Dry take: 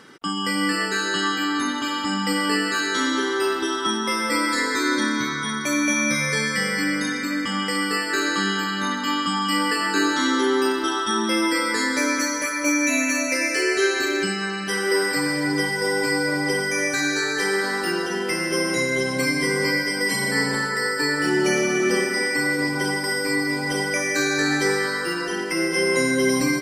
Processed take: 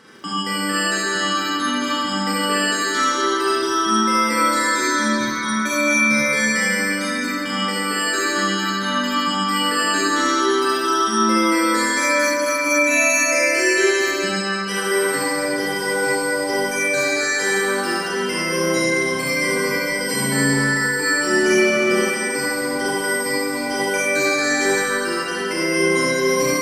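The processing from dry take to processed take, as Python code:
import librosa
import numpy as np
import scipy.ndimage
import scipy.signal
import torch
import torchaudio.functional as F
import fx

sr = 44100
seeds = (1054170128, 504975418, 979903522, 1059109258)

y = x + 10.0 ** (-6.0 / 20.0) * np.pad(x, (int(73 * sr / 1000.0), 0))[:len(x)]
y = fx.dmg_crackle(y, sr, seeds[0], per_s=10.0, level_db=-37.0)
y = fx.rev_schroeder(y, sr, rt60_s=0.96, comb_ms=29, drr_db=-4.0)
y = y * 10.0 ** (-2.5 / 20.0)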